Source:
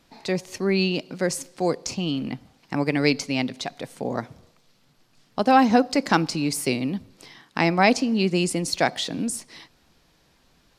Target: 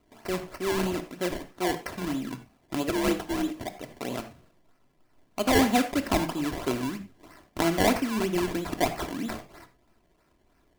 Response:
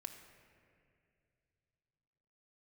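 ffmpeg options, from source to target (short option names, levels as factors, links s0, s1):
-filter_complex "[0:a]asettb=1/sr,asplit=3[s0][s1][s2];[s0]atrim=end=2.894[s3];[s1]atrim=start=2.89:end=3.68,asetpts=PTS-STARTPTS,afade=t=in:d=0.004:c=qsin,afade=t=out:st=0.786:d=0.004:c=qsin,afreqshift=57[s4];[s2]atrim=start=3.676[s5];[s3][s4]acrossfade=d=0.004:c1=hsin:c2=qsin[s6];[s6][s5]acrossfade=d=0.004:c1=qsin:c2=hsin,acrusher=samples=24:mix=1:aa=0.000001:lfo=1:lforange=24:lforate=3.1[s7];[1:a]atrim=start_sample=2205,afade=t=out:st=0.15:d=0.01,atrim=end_sample=7056[s8];[s7][s8]afir=irnorm=-1:irlink=0"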